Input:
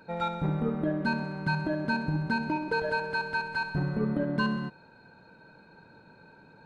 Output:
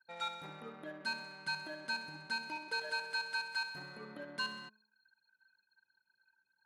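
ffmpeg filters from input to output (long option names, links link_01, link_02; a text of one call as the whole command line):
ffmpeg -i in.wav -af "aderivative,anlmdn=0.0000251,bandreject=frequency=213.1:width_type=h:width=4,bandreject=frequency=426.2:width_type=h:width=4,bandreject=frequency=639.3:width_type=h:width=4,bandreject=frequency=852.4:width_type=h:width=4,bandreject=frequency=1065.5:width_type=h:width=4,volume=6.5dB" out.wav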